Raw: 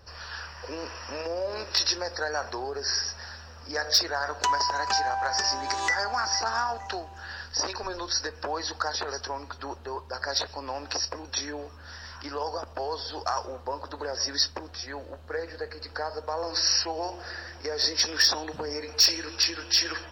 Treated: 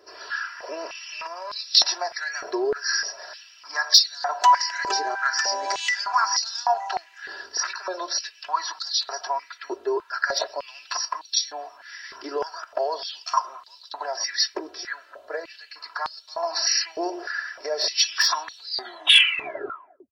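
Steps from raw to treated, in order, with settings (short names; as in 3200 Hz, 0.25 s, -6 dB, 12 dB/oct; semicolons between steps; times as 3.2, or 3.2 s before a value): tape stop at the end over 1.56 s; comb 3 ms, depth 83%; stepped high-pass 3.3 Hz 400–3900 Hz; gain -2 dB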